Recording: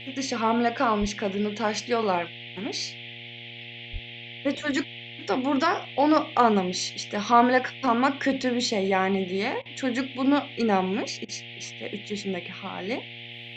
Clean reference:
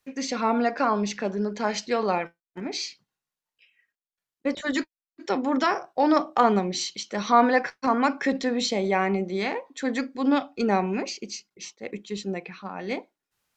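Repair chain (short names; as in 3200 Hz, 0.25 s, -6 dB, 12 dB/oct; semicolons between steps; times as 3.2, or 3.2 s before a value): de-hum 118.3 Hz, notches 7; 1–1.12 HPF 140 Hz 24 dB/oct; 3.92–4.04 HPF 140 Hz 24 dB/oct; interpolate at 9.62/11.25, 34 ms; noise print and reduce 30 dB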